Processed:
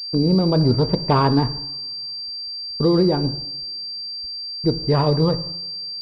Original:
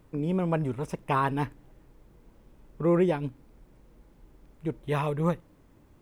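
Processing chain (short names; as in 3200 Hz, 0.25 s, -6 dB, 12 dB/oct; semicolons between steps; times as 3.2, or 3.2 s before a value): gate -48 dBFS, range -33 dB; tilt shelf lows +6 dB, about 930 Hz; limiter -17 dBFS, peak gain reduction 7 dB; vocal rider 0.5 s; reverb, pre-delay 3 ms, DRR 10 dB; pulse-width modulation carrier 4700 Hz; gain +9 dB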